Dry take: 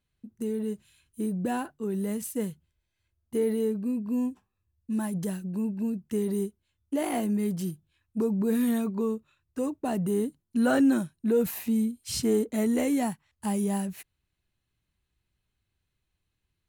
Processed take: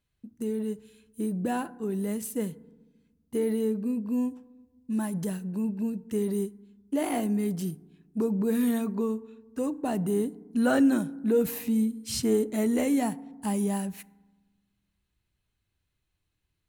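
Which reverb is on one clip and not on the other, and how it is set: FDN reverb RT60 1.2 s, low-frequency decay 1.5×, high-frequency decay 0.35×, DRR 18 dB

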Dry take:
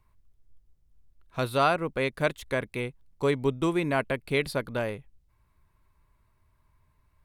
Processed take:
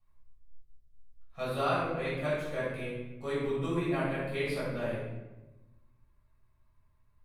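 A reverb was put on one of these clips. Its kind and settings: shoebox room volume 500 m³, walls mixed, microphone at 6.3 m; gain -19 dB

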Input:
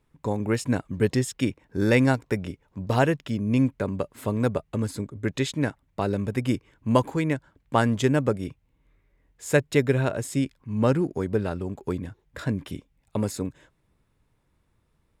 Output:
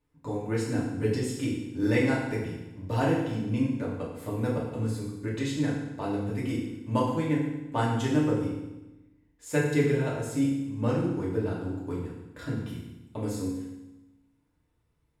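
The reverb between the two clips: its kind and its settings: FDN reverb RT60 1 s, low-frequency decay 1.3×, high-frequency decay 0.95×, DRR -6 dB; gain -12 dB

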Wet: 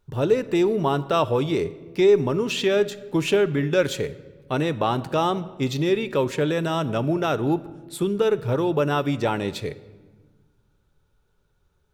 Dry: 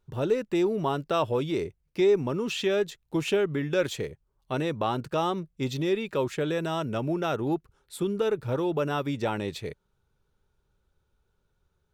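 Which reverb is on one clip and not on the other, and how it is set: shoebox room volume 1200 m³, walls mixed, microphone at 0.33 m; gain +5 dB

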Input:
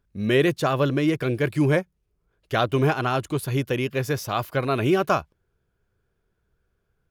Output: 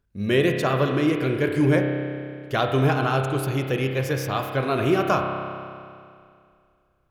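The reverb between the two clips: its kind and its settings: spring tank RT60 2.3 s, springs 30 ms, chirp 20 ms, DRR 3 dB; gain -1 dB

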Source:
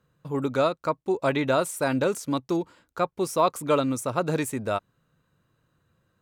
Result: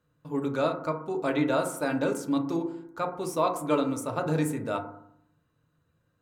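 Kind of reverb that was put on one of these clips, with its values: FDN reverb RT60 0.69 s, low-frequency decay 1.35×, high-frequency decay 0.3×, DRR 3 dB; gain -5.5 dB

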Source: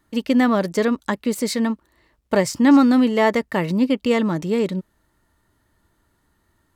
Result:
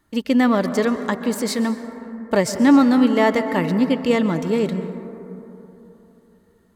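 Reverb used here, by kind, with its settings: plate-style reverb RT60 3.4 s, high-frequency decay 0.25×, pre-delay 0.115 s, DRR 9.5 dB

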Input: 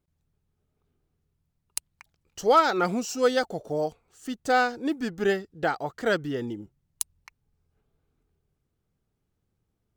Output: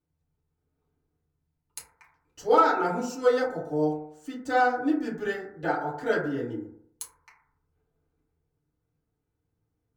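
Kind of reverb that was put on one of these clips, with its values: FDN reverb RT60 0.68 s, low-frequency decay 0.85×, high-frequency decay 0.25×, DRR -8 dB; gain -11 dB

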